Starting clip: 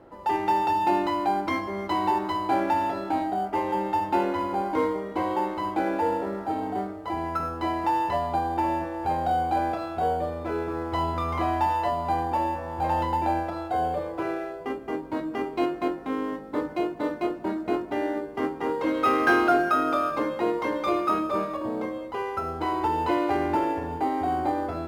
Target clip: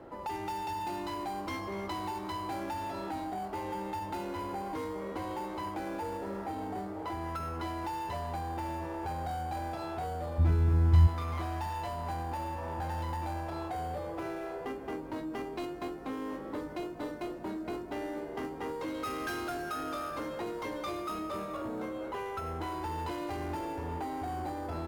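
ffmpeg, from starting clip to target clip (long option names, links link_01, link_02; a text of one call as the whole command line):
ffmpeg -i in.wav -filter_complex "[0:a]asettb=1/sr,asplit=3[link_01][link_02][link_03];[link_01]atrim=end=21.364[link_04];[link_02]atrim=start=21.36:end=22.72,asetpts=PTS-STARTPTS,afade=type=in:duration=0.004:curve=qsin,afade=type=out:start_time=1.356:duration=0.004:curve=qsin,bandreject=frequency=4800:width=7.1[link_05];[link_03]atrim=start=22.716[link_06];[link_04][link_05]acrossfade=duration=0.004:curve1=hsin:curve2=qsin[link_07];[link_07][link_06]acrossfade=duration=0.004:curve1=qsin:curve2=hsin,asplit=6[link_08][link_09][link_10][link_11][link_12][link_13];[link_09]adelay=240,afreqshift=74,volume=-17dB[link_14];[link_10]adelay=480,afreqshift=148,volume=-22.5dB[link_15];[link_11]adelay=720,afreqshift=222,volume=-28dB[link_16];[link_12]adelay=960,afreqshift=296,volume=-33.5dB[link_17];[link_13]adelay=1200,afreqshift=370,volume=-39.1dB[link_18];[link_08][link_14][link_15][link_16][link_17][link_18]amix=inputs=6:normalize=0,acrossover=split=130|4100[link_19][link_20][link_21];[link_20]acompressor=threshold=-35dB:ratio=6[link_22];[link_19][link_22][link_21]amix=inputs=3:normalize=0,asoftclip=type=tanh:threshold=-31.5dB,asplit=3[link_23][link_24][link_25];[link_23]afade=type=out:start_time=10.38:duration=0.02[link_26];[link_24]asubboost=boost=11:cutoff=150,afade=type=in:start_time=10.38:duration=0.02,afade=type=out:start_time=11.06:duration=0.02[link_27];[link_25]afade=type=in:start_time=11.06:duration=0.02[link_28];[link_26][link_27][link_28]amix=inputs=3:normalize=0,volume=1.5dB" out.wav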